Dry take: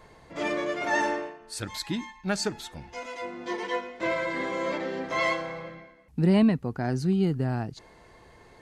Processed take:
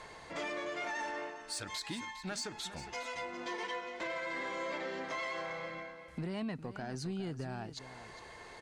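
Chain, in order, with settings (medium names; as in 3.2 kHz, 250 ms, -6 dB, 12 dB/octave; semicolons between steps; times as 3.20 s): low-pass 10 kHz 24 dB/octave; bass shelf 450 Hz -10.5 dB; peak limiter -25.5 dBFS, peak gain reduction 8.5 dB; compression 2.5:1, threshold -45 dBFS, peak gain reduction 11 dB; saturation -35 dBFS, distortion -22 dB; on a send: delay 407 ms -13 dB; on the sum: tape noise reduction on one side only encoder only; trim +5.5 dB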